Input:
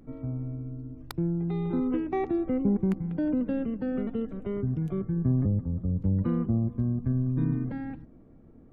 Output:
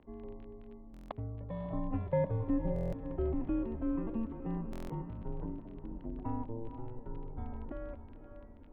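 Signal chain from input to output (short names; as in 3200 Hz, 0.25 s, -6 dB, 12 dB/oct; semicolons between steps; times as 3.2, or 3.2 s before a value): band shelf 760 Hz +11.5 dB; diffused feedback echo 0.519 s, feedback 50%, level -10 dB; crackle 21/s -34 dBFS; mistuned SSB -230 Hz 230–3400 Hz; stuck buffer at 0.92/2.74/4.71, samples 1024, times 7; gain -8 dB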